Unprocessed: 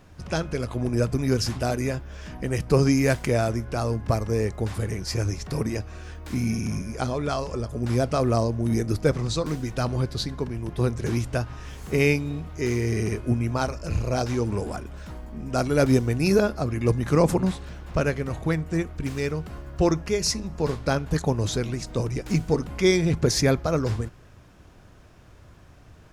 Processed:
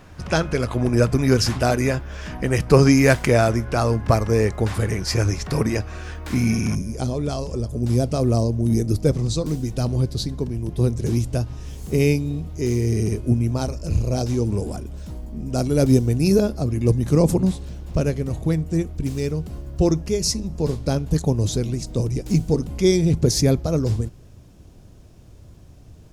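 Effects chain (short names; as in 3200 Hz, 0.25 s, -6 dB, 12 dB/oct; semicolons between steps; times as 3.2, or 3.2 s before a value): bell 1500 Hz +2.5 dB 2.2 oct, from 6.75 s -14.5 dB; gain +5.5 dB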